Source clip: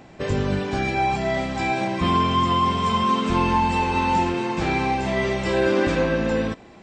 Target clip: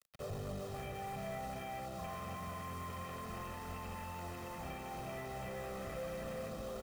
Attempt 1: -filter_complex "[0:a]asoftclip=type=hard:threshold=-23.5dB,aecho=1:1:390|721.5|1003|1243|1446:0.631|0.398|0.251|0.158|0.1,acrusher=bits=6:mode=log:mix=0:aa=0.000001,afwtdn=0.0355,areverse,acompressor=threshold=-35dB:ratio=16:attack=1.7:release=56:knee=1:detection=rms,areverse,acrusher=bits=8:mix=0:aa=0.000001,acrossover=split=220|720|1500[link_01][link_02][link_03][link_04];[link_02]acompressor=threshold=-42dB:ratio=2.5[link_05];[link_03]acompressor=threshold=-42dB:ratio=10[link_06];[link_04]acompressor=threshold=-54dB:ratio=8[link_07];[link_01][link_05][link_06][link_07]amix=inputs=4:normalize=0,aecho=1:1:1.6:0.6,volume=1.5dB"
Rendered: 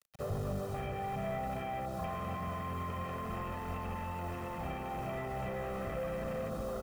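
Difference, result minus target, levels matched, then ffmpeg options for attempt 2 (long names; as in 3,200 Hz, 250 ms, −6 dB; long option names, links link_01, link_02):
downward compressor: peak gain reduction −6.5 dB
-filter_complex "[0:a]asoftclip=type=hard:threshold=-23.5dB,aecho=1:1:390|721.5|1003|1243|1446:0.631|0.398|0.251|0.158|0.1,acrusher=bits=6:mode=log:mix=0:aa=0.000001,afwtdn=0.0355,areverse,acompressor=threshold=-42dB:ratio=16:attack=1.7:release=56:knee=1:detection=rms,areverse,acrusher=bits=8:mix=0:aa=0.000001,acrossover=split=220|720|1500[link_01][link_02][link_03][link_04];[link_02]acompressor=threshold=-42dB:ratio=2.5[link_05];[link_03]acompressor=threshold=-42dB:ratio=10[link_06];[link_04]acompressor=threshold=-54dB:ratio=8[link_07];[link_01][link_05][link_06][link_07]amix=inputs=4:normalize=0,aecho=1:1:1.6:0.6,volume=1.5dB"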